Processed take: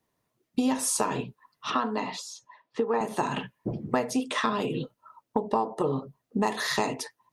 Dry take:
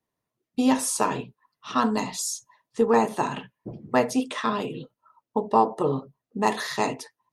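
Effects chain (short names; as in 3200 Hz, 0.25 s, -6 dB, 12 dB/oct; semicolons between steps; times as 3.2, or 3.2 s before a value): compressor 6:1, threshold -30 dBFS, peak gain reduction 15 dB; 1.7–3.01 three-band isolator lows -12 dB, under 230 Hz, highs -22 dB, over 4100 Hz; gain +6.5 dB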